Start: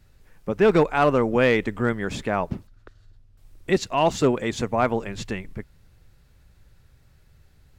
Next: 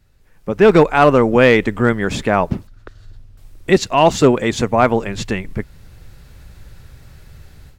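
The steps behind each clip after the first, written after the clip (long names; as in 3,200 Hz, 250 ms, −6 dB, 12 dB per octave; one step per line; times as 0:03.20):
automatic gain control gain up to 16 dB
level −1 dB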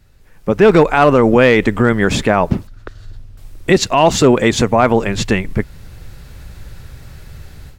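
boost into a limiter +7 dB
level −1 dB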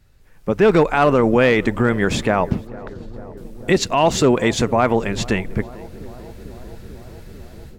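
feedback echo with a low-pass in the loop 445 ms, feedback 83%, low-pass 1,300 Hz, level −20 dB
level −4.5 dB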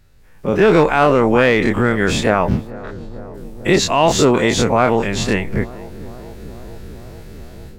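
every bin's largest magnitude spread in time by 60 ms
level −1 dB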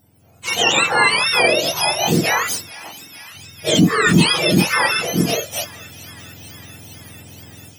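frequency axis turned over on the octave scale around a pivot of 1,100 Hz
level +1 dB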